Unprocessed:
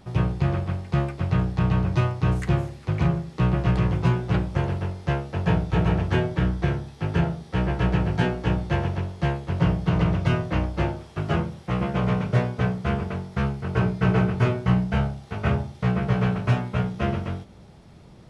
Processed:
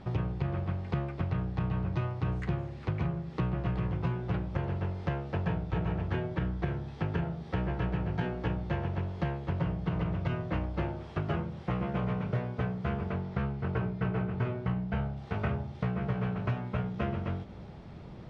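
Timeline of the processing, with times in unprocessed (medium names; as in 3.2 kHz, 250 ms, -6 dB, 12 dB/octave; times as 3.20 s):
13.12–15.17 s: distance through air 73 m
whole clip: Bessel low-pass 2.9 kHz, order 2; compression 5:1, threshold -32 dBFS; trim +2.5 dB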